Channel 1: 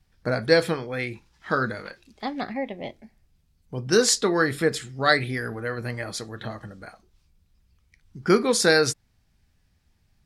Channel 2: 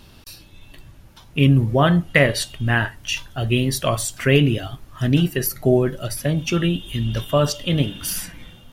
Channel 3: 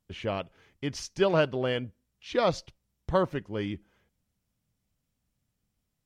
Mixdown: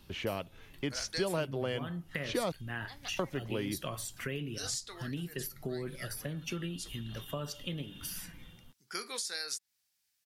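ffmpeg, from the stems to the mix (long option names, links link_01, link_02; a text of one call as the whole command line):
ffmpeg -i stem1.wav -i stem2.wav -i stem3.wav -filter_complex "[0:a]aderivative,adelay=650,volume=0.5dB[link_01];[1:a]equalizer=frequency=160:width_type=o:width=0.33:gain=4,equalizer=frequency=630:width_type=o:width=0.33:gain=-5,equalizer=frequency=12500:width_type=o:width=0.33:gain=6,volume=-12dB,asplit=2[link_02][link_03];[2:a]volume=2dB,asplit=3[link_04][link_05][link_06];[link_04]atrim=end=2.52,asetpts=PTS-STARTPTS,afade=type=out:start_time=2.516:duration=0.004:curve=hsin[link_07];[link_05]atrim=start=2.52:end=3.19,asetpts=PTS-STARTPTS,volume=0[link_08];[link_06]atrim=start=3.19,asetpts=PTS-STARTPTS,afade=type=in:duration=0.004:curve=hsin[link_09];[link_07][link_08][link_09]concat=n=3:v=0:a=1[link_10];[link_03]apad=whole_len=480948[link_11];[link_01][link_11]sidechaincompress=threshold=-39dB:ratio=5:attack=16:release=191[link_12];[link_12][link_02]amix=inputs=2:normalize=0,acompressor=threshold=-33dB:ratio=4,volume=0dB[link_13];[link_10][link_13]amix=inputs=2:normalize=0,acrossover=split=220|6000[link_14][link_15][link_16];[link_14]acompressor=threshold=-42dB:ratio=4[link_17];[link_15]acompressor=threshold=-33dB:ratio=4[link_18];[link_16]acompressor=threshold=-41dB:ratio=4[link_19];[link_17][link_18][link_19]amix=inputs=3:normalize=0" out.wav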